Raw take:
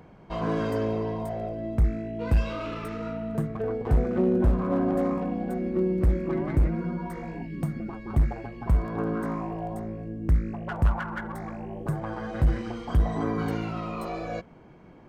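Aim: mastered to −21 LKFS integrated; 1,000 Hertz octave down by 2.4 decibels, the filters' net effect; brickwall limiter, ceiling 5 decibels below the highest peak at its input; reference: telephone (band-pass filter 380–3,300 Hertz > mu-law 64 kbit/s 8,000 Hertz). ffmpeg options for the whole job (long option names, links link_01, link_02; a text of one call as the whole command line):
ffmpeg -i in.wav -af "equalizer=frequency=1000:width_type=o:gain=-3,alimiter=limit=-19.5dB:level=0:latency=1,highpass=380,lowpass=3300,volume=15.5dB" -ar 8000 -c:a pcm_mulaw out.wav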